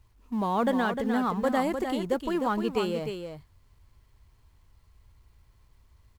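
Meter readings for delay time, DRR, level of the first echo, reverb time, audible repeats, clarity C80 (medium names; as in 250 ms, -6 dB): 304 ms, no reverb, -7.0 dB, no reverb, 1, no reverb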